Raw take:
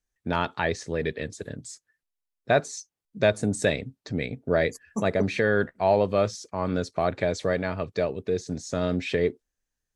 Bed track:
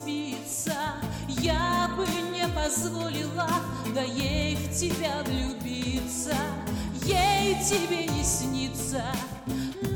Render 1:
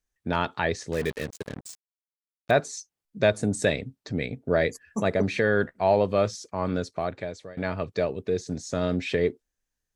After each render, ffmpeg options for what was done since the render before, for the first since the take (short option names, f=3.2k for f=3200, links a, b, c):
-filter_complex "[0:a]asettb=1/sr,asplit=3[a][b][c];[a]atrim=end=0.924[d];[b]atrim=start=0.92:end=2.51,asetpts=PTS-STARTPTS,afade=t=in:d=0.004:c=qsin,afade=t=out:st=1.586:d=0.004:c=qsin,acrusher=bits=5:mix=0:aa=0.5[e];[c]atrim=start=2.506[f];[d][e]acrossfade=d=0.004:c1=hsin:c2=qsin[g];[g][f]acrossfade=d=0.004:c1=qsin:c2=hsin,asplit=2[h][i];[h]atrim=end=7.57,asetpts=PTS-STARTPTS,afade=t=out:st=6.67:d=0.9:silence=0.0668344[j];[i]atrim=start=7.57,asetpts=PTS-STARTPTS,afade=t=in:d=0.004:c=hsin:silence=0.0668344[k];[j][k]concat=n=2:v=0:a=1"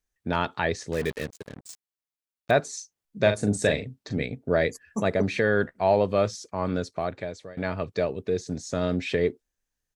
-filter_complex "[0:a]asplit=3[a][b][c];[a]afade=t=out:st=2.72:d=0.02[d];[b]asplit=2[e][f];[f]adelay=39,volume=-7.5dB[g];[e][g]amix=inputs=2:normalize=0,afade=t=in:st=2.72:d=0.02,afade=t=out:st=4.22:d=0.02[h];[c]afade=t=in:st=4.22:d=0.02[i];[d][h][i]amix=inputs=3:normalize=0,asplit=3[j][k][l];[j]atrim=end=1.272[m];[k]atrim=start=1.268:end=1.692,asetpts=PTS-STARTPTS,volume=-5dB[n];[l]atrim=start=1.688[o];[m][n]acrossfade=d=0.004:c1=hsin:c2=hsin[p];[p][o]acrossfade=d=0.004:c1=hsin:c2=hsin"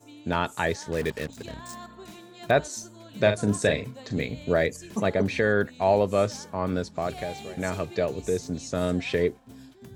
-filter_complex "[1:a]volume=-16.5dB[a];[0:a][a]amix=inputs=2:normalize=0"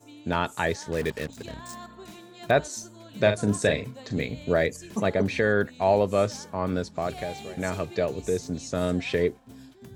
-af anull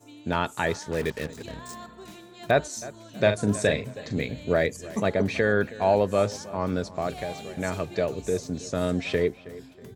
-filter_complex "[0:a]asplit=2[a][b];[b]adelay=320,lowpass=f=3.3k:p=1,volume=-18dB,asplit=2[c][d];[d]adelay=320,lowpass=f=3.3k:p=1,volume=0.36,asplit=2[e][f];[f]adelay=320,lowpass=f=3.3k:p=1,volume=0.36[g];[a][c][e][g]amix=inputs=4:normalize=0"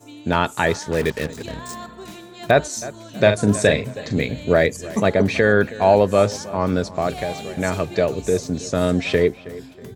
-af "volume=7dB,alimiter=limit=-2dB:level=0:latency=1"